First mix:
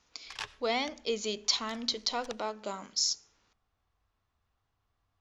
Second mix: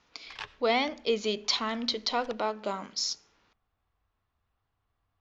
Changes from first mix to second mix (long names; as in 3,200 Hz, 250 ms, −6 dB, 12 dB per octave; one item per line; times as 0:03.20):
speech +5.0 dB
master: add low-pass filter 3,900 Hz 12 dB per octave